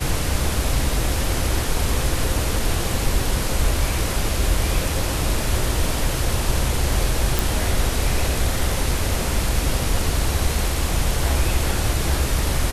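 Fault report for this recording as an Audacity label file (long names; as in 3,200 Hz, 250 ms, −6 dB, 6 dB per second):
7.390000	7.390000	click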